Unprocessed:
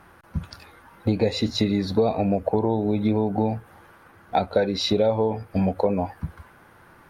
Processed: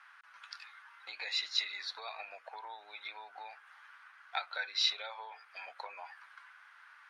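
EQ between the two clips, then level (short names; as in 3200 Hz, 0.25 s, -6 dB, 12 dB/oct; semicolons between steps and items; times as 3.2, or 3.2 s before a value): HPF 1300 Hz 24 dB/oct; air absorption 100 m; 0.0 dB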